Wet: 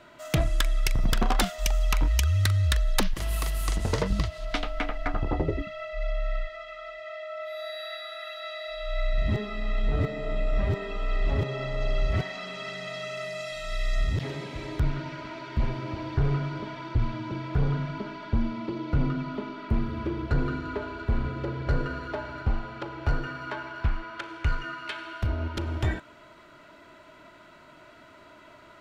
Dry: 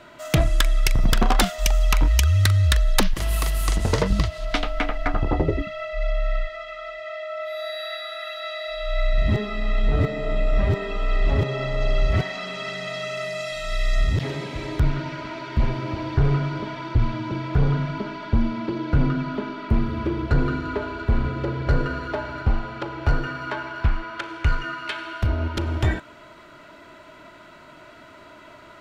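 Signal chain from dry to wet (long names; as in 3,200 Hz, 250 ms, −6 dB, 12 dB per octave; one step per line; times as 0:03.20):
0:18.54–0:19.55: notch filter 1,600 Hz, Q 9.3
level −5.5 dB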